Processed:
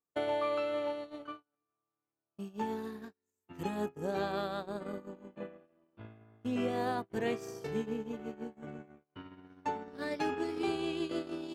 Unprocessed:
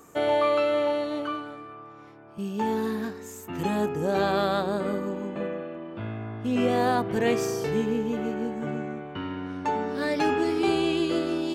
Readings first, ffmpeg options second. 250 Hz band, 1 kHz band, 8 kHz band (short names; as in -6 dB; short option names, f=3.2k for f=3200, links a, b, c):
-11.0 dB, -10.0 dB, -13.5 dB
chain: -af "acompressor=threshold=-40dB:ratio=3,agate=range=-50dB:threshold=-37dB:ratio=16:detection=peak,volume=5.5dB"